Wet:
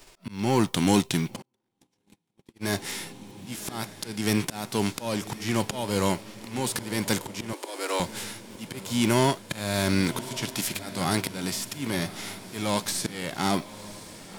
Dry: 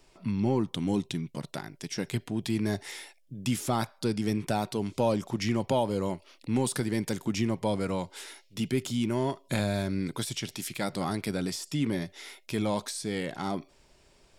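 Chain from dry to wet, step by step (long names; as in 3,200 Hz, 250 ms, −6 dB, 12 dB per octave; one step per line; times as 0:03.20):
spectral envelope flattened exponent 0.6
volume swells 375 ms
feedback delay with all-pass diffusion 1,095 ms, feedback 50%, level −14.5 dB
0:01.42–0:02.64: noise gate −38 dBFS, range −42 dB
0:07.53–0:08.00: Butterworth high-pass 290 Hz 72 dB per octave
level +7 dB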